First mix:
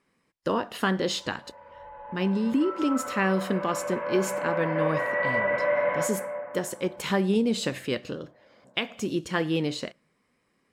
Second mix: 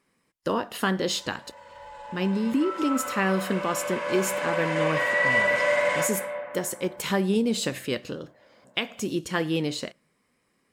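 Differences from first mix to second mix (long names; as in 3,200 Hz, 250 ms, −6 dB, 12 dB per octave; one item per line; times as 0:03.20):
background: remove Bessel low-pass filter 1,500 Hz, order 4
master: add high-shelf EQ 7,900 Hz +9.5 dB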